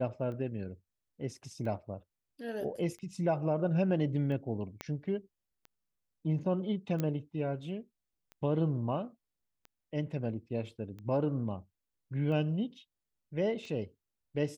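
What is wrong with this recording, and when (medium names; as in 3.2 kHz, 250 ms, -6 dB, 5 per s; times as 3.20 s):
tick 45 rpm -34 dBFS
4.81 s: pop -22 dBFS
7.00 s: pop -19 dBFS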